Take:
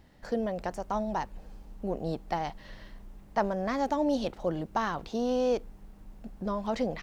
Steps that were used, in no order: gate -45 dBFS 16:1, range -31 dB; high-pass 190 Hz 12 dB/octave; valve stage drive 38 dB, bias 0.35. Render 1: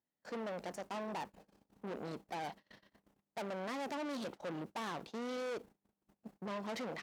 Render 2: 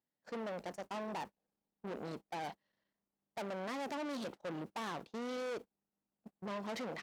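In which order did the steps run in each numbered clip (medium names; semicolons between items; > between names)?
valve stage > gate > high-pass; valve stage > high-pass > gate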